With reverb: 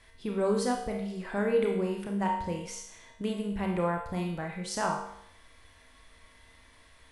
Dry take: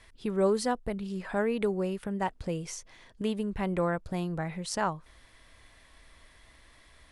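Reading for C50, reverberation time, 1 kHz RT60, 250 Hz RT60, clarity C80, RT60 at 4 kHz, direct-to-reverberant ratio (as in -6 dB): 3.5 dB, 0.75 s, 0.75 s, 0.75 s, 7.0 dB, 0.70 s, 0.0 dB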